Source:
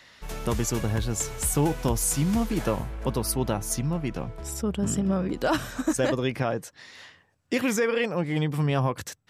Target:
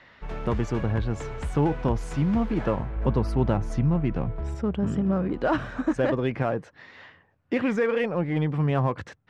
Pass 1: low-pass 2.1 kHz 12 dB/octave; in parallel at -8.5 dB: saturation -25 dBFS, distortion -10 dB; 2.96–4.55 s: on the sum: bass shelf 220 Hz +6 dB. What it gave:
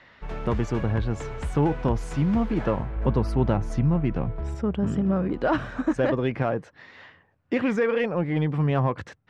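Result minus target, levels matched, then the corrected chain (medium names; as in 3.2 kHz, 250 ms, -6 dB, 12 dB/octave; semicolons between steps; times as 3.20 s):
saturation: distortion -5 dB
low-pass 2.1 kHz 12 dB/octave; in parallel at -8.5 dB: saturation -32.5 dBFS, distortion -5 dB; 2.96–4.55 s: on the sum: bass shelf 220 Hz +6 dB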